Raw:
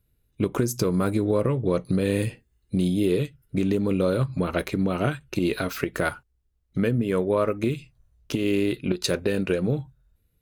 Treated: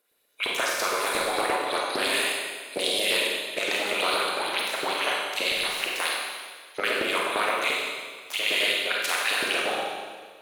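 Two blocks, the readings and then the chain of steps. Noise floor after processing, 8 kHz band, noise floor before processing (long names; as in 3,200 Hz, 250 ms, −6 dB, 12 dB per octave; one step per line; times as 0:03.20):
−49 dBFS, +6.5 dB, −71 dBFS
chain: ceiling on every frequency bin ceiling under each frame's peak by 29 dB
auto-filter high-pass saw up 8.7 Hz 330–4,700 Hz
four-comb reverb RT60 1.6 s, combs from 31 ms, DRR −3 dB
highs frequency-modulated by the lows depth 0.24 ms
level −7 dB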